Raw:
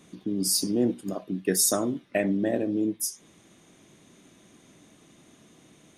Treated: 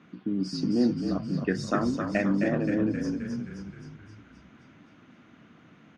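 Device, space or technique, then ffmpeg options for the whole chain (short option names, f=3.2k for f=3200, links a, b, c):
frequency-shifting delay pedal into a guitar cabinet: -filter_complex "[0:a]asplit=9[a][b][c][d][e][f][g][h][i];[b]adelay=263,afreqshift=-43,volume=-5.5dB[j];[c]adelay=526,afreqshift=-86,volume=-9.9dB[k];[d]adelay=789,afreqshift=-129,volume=-14.4dB[l];[e]adelay=1052,afreqshift=-172,volume=-18.8dB[m];[f]adelay=1315,afreqshift=-215,volume=-23.2dB[n];[g]adelay=1578,afreqshift=-258,volume=-27.7dB[o];[h]adelay=1841,afreqshift=-301,volume=-32.1dB[p];[i]adelay=2104,afreqshift=-344,volume=-36.6dB[q];[a][j][k][l][m][n][o][p][q]amix=inputs=9:normalize=0,highpass=92,equalizer=f=230:t=q:w=4:g=3,equalizer=f=400:t=q:w=4:g=-5,equalizer=f=590:t=q:w=4:g=-4,equalizer=f=1.4k:t=q:w=4:g=9,equalizer=f=3.6k:t=q:w=4:g=-9,lowpass=f=3.9k:w=0.5412,lowpass=f=3.9k:w=1.3066"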